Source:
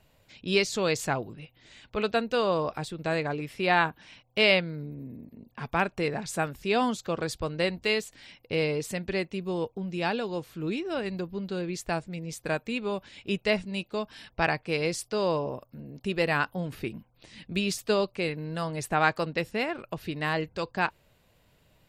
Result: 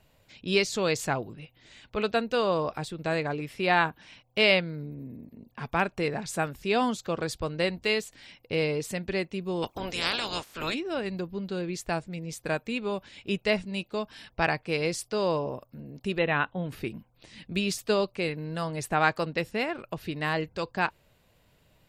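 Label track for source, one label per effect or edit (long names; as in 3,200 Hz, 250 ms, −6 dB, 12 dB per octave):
9.620000	10.730000	ceiling on every frequency bin ceiling under each frame's peak by 29 dB
16.180000	16.690000	linear-phase brick-wall low-pass 4,100 Hz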